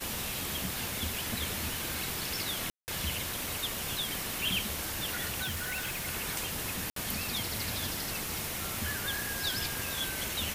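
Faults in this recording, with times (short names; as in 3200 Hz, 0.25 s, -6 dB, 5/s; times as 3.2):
crackle 16/s -40 dBFS
2.7–2.88 gap 0.179 s
5.42–6.07 clipped -31 dBFS
6.9–6.96 gap 63 ms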